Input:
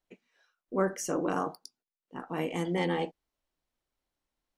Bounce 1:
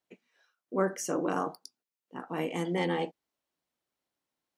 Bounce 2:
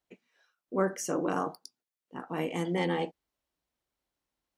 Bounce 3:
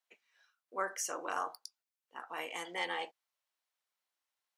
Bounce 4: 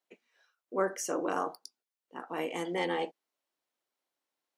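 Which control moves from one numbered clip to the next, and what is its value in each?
HPF, cutoff: 130, 47, 930, 340 Hz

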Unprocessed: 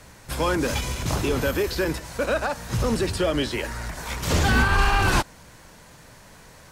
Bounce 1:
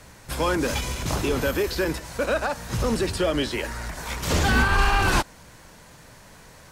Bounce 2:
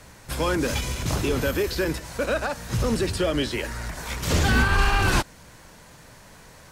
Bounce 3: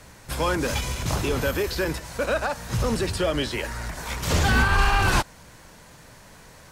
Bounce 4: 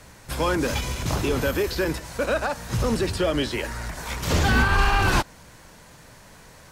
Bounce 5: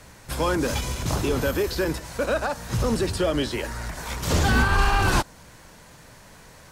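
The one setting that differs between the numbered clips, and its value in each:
dynamic EQ, frequency: 110, 890, 300, 8900, 2300 Hz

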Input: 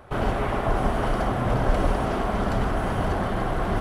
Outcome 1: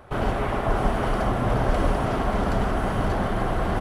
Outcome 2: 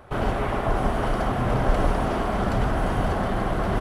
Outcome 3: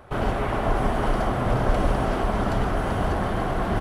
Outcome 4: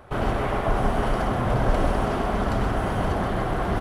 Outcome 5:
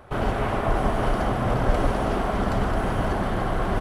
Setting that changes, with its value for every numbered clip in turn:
echo, time: 0.583, 1.12, 0.388, 0.129, 0.218 s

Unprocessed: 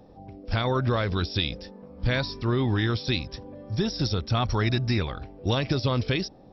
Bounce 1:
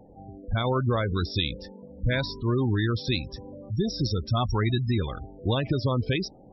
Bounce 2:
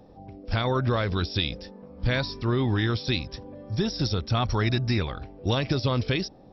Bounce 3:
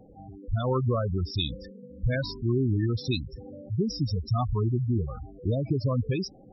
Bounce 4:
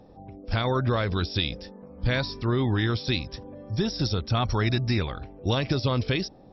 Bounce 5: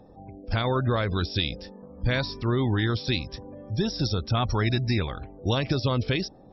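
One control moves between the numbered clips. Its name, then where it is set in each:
spectral gate, under each frame's peak: -20, -60, -10, -45, -35 dB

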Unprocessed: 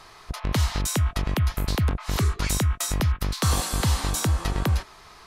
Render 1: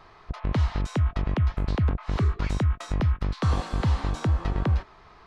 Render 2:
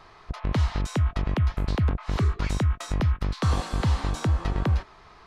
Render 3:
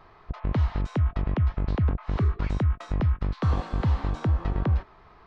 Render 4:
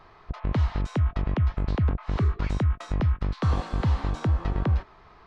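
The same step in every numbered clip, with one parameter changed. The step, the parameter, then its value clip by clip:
tape spacing loss, at 10 kHz: 28, 20, 45, 37 dB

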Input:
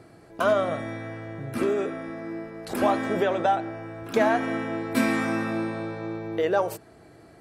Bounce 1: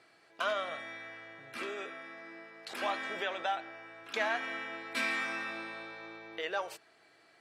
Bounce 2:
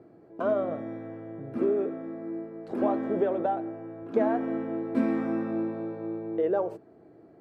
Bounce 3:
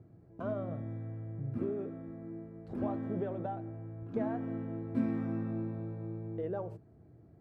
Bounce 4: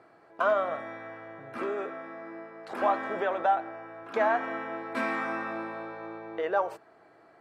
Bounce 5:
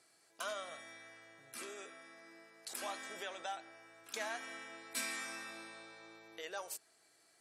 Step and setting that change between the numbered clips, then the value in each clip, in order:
band-pass, frequency: 3000, 340, 100, 1100, 7700 Hz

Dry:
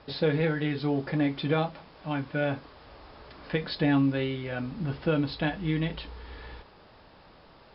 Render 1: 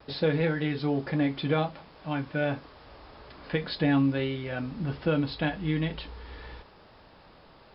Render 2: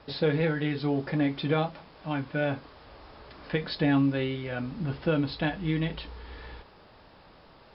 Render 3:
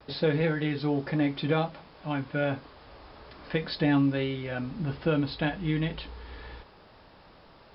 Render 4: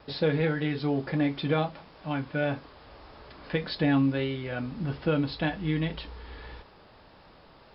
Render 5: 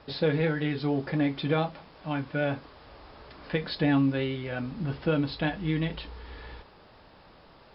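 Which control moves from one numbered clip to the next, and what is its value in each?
vibrato, rate: 0.49, 3, 0.31, 1.7, 8.8 Hz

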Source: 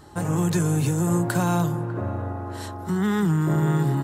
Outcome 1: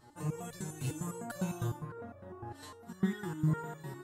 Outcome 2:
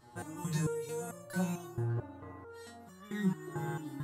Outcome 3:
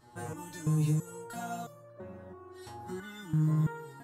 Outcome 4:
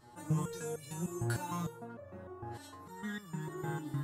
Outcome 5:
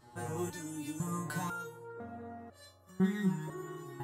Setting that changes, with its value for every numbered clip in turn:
stepped resonator, rate: 9.9, 4.5, 3, 6.6, 2 Hz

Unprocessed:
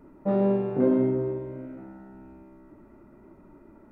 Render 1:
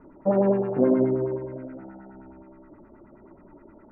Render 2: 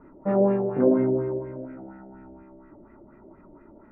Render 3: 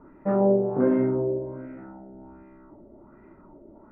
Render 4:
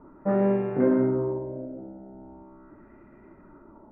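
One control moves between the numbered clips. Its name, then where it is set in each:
LFO low-pass, rate: 9.5, 4.2, 1.3, 0.4 Hz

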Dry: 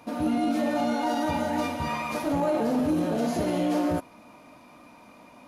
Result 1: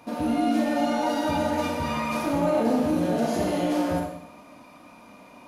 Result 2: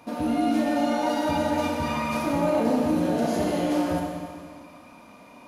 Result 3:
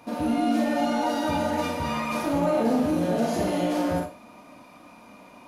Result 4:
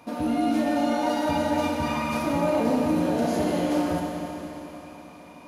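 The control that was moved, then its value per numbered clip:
Schroeder reverb, RT60: 0.74, 1.9, 0.33, 3.9 s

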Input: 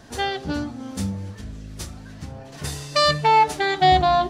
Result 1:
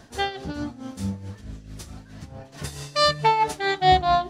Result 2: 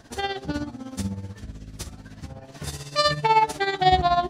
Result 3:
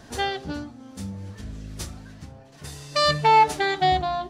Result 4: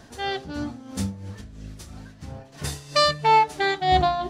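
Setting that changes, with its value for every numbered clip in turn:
tremolo, rate: 4.6, 16, 0.59, 3 Hz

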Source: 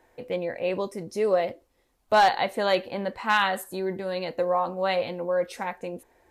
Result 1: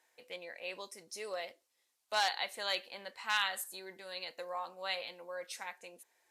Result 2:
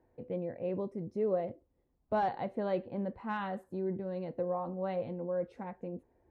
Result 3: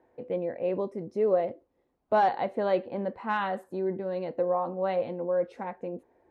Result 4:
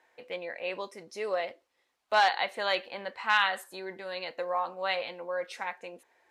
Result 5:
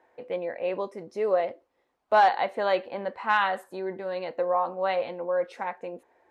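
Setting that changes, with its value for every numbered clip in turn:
band-pass, frequency: 7400, 110, 300, 2500, 880 Hz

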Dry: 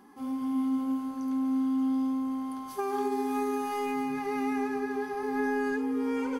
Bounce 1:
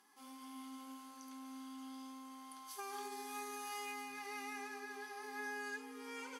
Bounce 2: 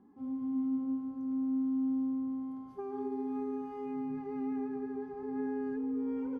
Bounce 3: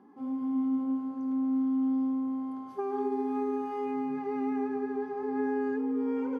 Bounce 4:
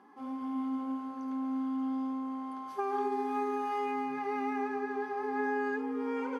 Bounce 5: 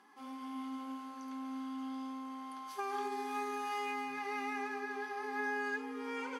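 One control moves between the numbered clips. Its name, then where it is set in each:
band-pass, frequency: 6800, 100, 330, 920, 2600 Hz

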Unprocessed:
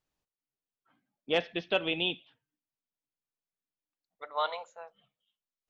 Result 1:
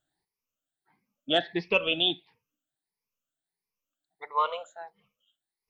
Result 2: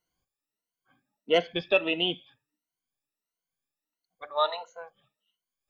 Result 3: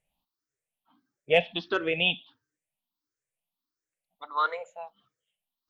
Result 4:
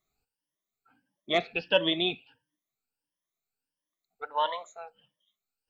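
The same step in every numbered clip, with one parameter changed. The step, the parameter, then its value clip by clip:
moving spectral ripple, ripples per octave: 0.84, 1.9, 0.5, 1.2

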